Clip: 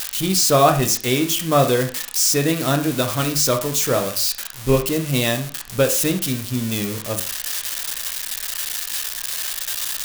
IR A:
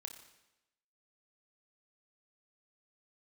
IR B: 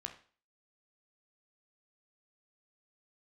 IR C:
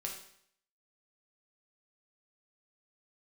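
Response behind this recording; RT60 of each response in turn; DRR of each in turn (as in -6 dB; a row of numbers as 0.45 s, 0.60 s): B; 0.95 s, 0.40 s, 0.65 s; 5.0 dB, 4.5 dB, -1.0 dB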